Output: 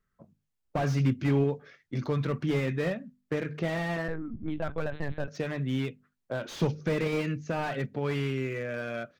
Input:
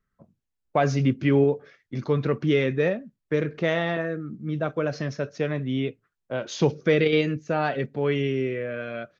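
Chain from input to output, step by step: notches 50/100/150/200/250 Hz; 4.08–5.28 LPC vocoder at 8 kHz pitch kept; dynamic EQ 430 Hz, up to -8 dB, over -34 dBFS, Q 0.79; slew limiter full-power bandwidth 36 Hz

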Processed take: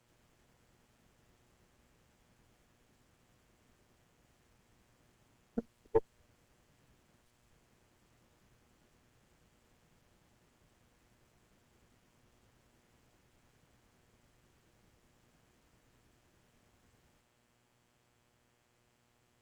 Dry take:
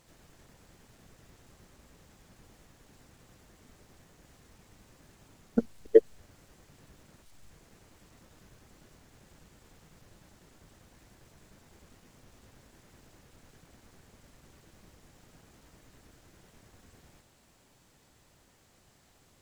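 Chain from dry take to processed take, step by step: tube stage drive 9 dB, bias 0.75; buzz 120 Hz, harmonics 28, -69 dBFS -3 dB/oct; gain -7.5 dB

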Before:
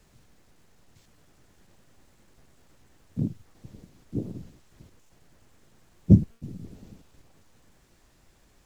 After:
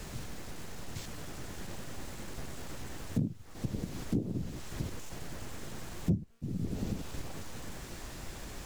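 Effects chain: compressor 8:1, threshold -47 dBFS, peak gain reduction 35.5 dB; gain +17.5 dB

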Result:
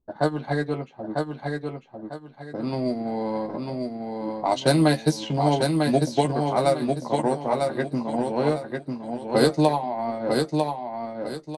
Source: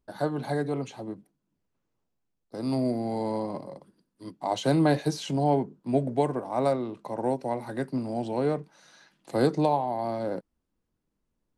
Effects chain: transient shaper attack +5 dB, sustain -7 dB; doubler 13 ms -6 dB; low-pass opened by the level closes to 630 Hz, open at -17 dBFS; high shelf 2200 Hz +11.5 dB; on a send: feedback echo 0.948 s, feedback 30%, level -4 dB

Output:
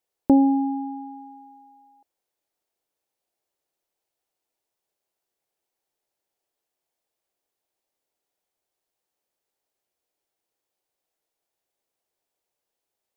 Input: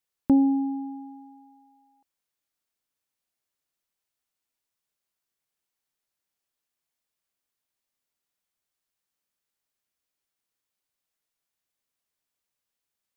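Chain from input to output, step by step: band shelf 530 Hz +9.5 dB

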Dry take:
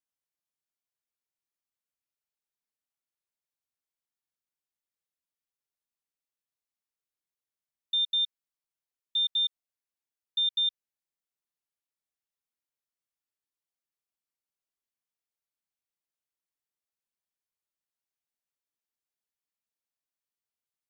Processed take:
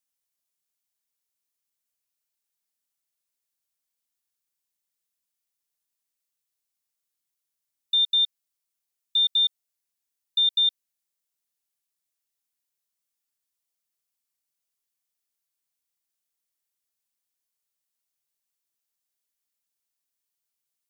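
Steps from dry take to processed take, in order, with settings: high shelf 3500 Hz +11 dB

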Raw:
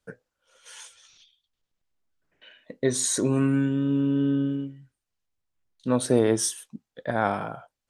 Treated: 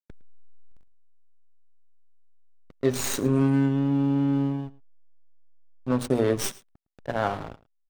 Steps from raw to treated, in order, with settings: tracing distortion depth 0.049 ms; notches 60/120/180/240/300/360/420/480/540/600 Hz; comb 7.3 ms, depth 41%; backlash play -24.5 dBFS; echo 0.109 s -21 dB; gain -1 dB

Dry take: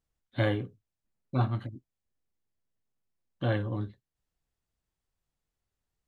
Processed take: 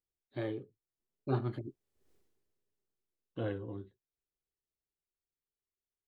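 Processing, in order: Doppler pass-by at 2.13, 16 m/s, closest 1.3 m; bell 390 Hz +13.5 dB 0.62 oct; gain +12.5 dB

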